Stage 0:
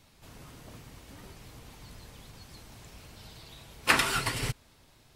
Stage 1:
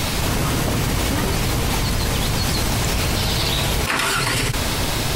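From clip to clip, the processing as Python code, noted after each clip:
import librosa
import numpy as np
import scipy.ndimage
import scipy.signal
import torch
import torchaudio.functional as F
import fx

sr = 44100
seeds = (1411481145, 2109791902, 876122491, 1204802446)

y = fx.env_flatten(x, sr, amount_pct=100)
y = F.gain(torch.from_numpy(y), -1.0).numpy()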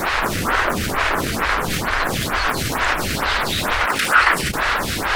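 y = fx.cycle_switch(x, sr, every=2, mode='inverted')
y = fx.peak_eq(y, sr, hz=1500.0, db=14.0, octaves=1.6)
y = fx.stagger_phaser(y, sr, hz=2.2)
y = F.gain(torch.from_numpy(y), -1.0).numpy()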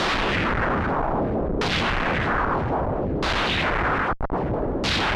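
y = fx.over_compress(x, sr, threshold_db=-23.0, ratio=-0.5)
y = fx.schmitt(y, sr, flips_db=-28.0)
y = fx.filter_lfo_lowpass(y, sr, shape='saw_down', hz=0.62, low_hz=400.0, high_hz=4500.0, q=1.7)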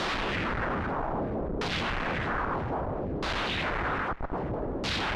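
y = x + 10.0 ** (-20.0 / 20.0) * np.pad(x, (int(385 * sr / 1000.0), 0))[:len(x)]
y = F.gain(torch.from_numpy(y), -7.5).numpy()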